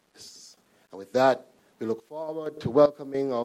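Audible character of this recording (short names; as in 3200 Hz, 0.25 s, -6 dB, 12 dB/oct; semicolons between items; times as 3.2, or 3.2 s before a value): random-step tremolo, depth 85%; a quantiser's noise floor 12-bit, dither none; MP3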